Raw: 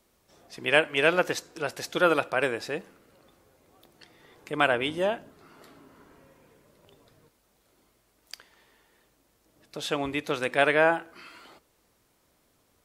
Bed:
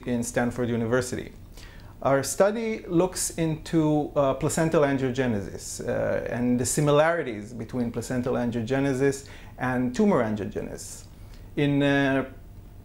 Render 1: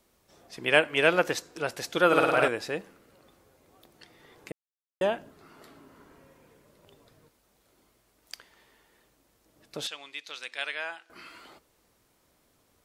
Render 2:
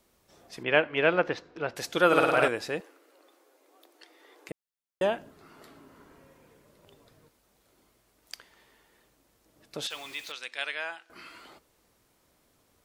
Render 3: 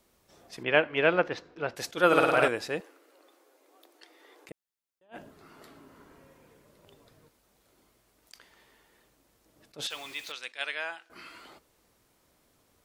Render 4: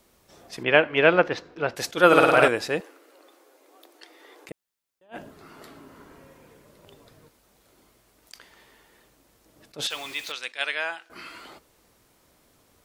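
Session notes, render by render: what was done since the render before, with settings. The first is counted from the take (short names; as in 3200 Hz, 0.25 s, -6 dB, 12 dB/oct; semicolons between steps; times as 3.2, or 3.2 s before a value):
2.07–2.48 flutter echo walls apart 9.3 m, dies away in 1.4 s; 4.52–5.01 mute; 9.87–11.1 band-pass 4500 Hz, Q 1.3
0.63–1.76 air absorption 260 m; 2.8–4.49 elliptic high-pass 290 Hz; 9.9–10.32 zero-crossing step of -42.5 dBFS
attack slew limiter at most 340 dB/s
gain +6 dB; limiter -2 dBFS, peak gain reduction 2 dB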